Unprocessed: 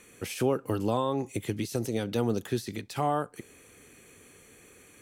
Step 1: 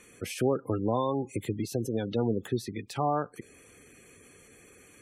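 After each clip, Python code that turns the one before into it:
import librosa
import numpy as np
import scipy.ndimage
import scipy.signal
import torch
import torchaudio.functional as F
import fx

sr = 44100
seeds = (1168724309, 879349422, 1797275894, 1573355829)

y = fx.spec_gate(x, sr, threshold_db=-20, keep='strong')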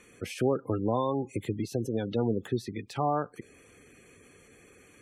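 y = fx.high_shelf(x, sr, hz=7200.0, db=-8.5)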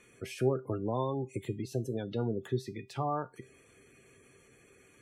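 y = fx.comb_fb(x, sr, f0_hz=130.0, decay_s=0.22, harmonics='odd', damping=0.0, mix_pct=70)
y = y * 10.0 ** (3.5 / 20.0)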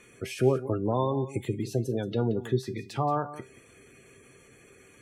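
y = x + 10.0 ** (-15.0 / 20.0) * np.pad(x, (int(178 * sr / 1000.0), 0))[:len(x)]
y = y * 10.0 ** (5.5 / 20.0)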